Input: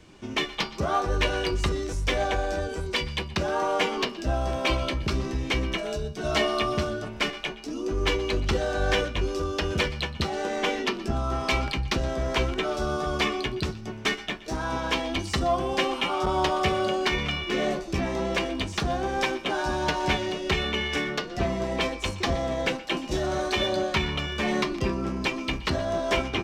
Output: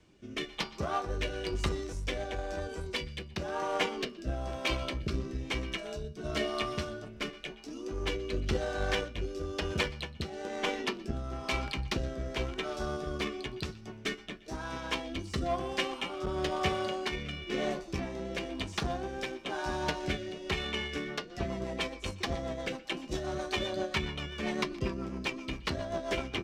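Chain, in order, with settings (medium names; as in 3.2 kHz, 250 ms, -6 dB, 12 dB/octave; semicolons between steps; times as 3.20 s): Chebyshev shaper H 7 -26 dB, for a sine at -10 dBFS; rotary cabinet horn 1 Hz, later 7.5 Hz, at 20.72 s; trim -4 dB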